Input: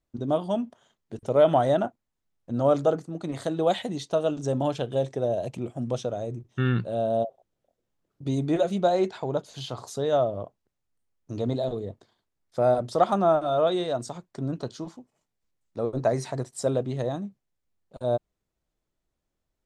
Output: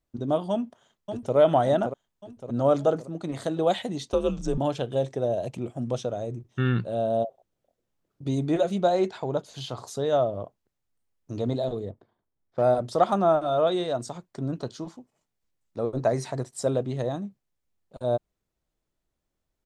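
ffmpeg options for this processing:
ffmpeg -i in.wav -filter_complex "[0:a]asplit=2[link_01][link_02];[link_02]afade=type=in:start_time=0.51:duration=0.01,afade=type=out:start_time=1.36:duration=0.01,aecho=0:1:570|1140|1710|2280|2850|3420|3990:0.446684|0.245676|0.135122|0.074317|0.0408743|0.0224809|0.0123645[link_03];[link_01][link_03]amix=inputs=2:normalize=0,asettb=1/sr,asplit=3[link_04][link_05][link_06];[link_04]atrim=end=4.124[link_07];[link_05]atrim=start=4.12:end=4.58,asetpts=PTS-STARTPTS,afade=type=in:duration=0.004:curve=qsin,afade=type=out:start_time=0.456:duration=0.004:curve=qsin,afreqshift=-110[link_08];[link_06]atrim=start=4.576[link_09];[link_07][link_08]acrossfade=duration=0.004:curve1=hsin:curve2=qsin[link_10];[link_10][link_09]acrossfade=duration=0.004:curve1=qsin:curve2=hsin,asettb=1/sr,asplit=3[link_11][link_12][link_13];[link_11]atrim=end=11.904[link_14];[link_12]atrim=start=11.9:end=12.62,asetpts=PTS-STARTPTS,afade=type=in:duration=0.004:curve=qsin,afade=type=out:start_time=0.716:duration=0.004:curve=qsin,adynamicsmooth=sensitivity=8:basefreq=1500[link_15];[link_13]atrim=start=12.616[link_16];[link_14][link_15]acrossfade=duration=0.004:curve1=hsin:curve2=qsin[link_17];[link_17][link_16]acrossfade=duration=0.004:curve1=qsin:curve2=hsin" out.wav

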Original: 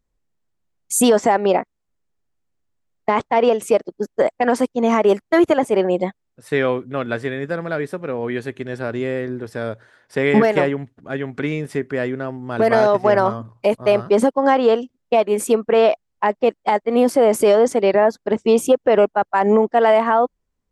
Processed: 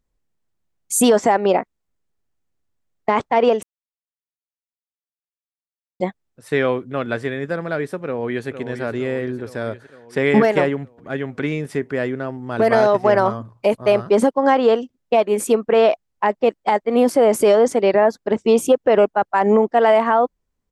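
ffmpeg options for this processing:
ffmpeg -i in.wav -filter_complex "[0:a]asplit=2[link_01][link_02];[link_02]afade=type=in:start_time=8.05:duration=0.01,afade=type=out:start_time=8.48:duration=0.01,aecho=0:1:460|920|1380|1840|2300|2760|3220|3680|4140:0.334965|0.217728|0.141523|0.0919899|0.0597934|0.0388657|0.0252627|0.0164208|0.0106735[link_03];[link_01][link_03]amix=inputs=2:normalize=0,asplit=3[link_04][link_05][link_06];[link_04]atrim=end=3.63,asetpts=PTS-STARTPTS,afade=type=out:start_time=3.626:duration=0.004:curve=hsin[link_07];[link_05]atrim=start=3.63:end=6,asetpts=PTS-STARTPTS,volume=0[link_08];[link_06]atrim=start=6,asetpts=PTS-STARTPTS,afade=type=in:duration=0.004:curve=hsin[link_09];[link_07][link_08][link_09]concat=n=3:v=0:a=1" out.wav

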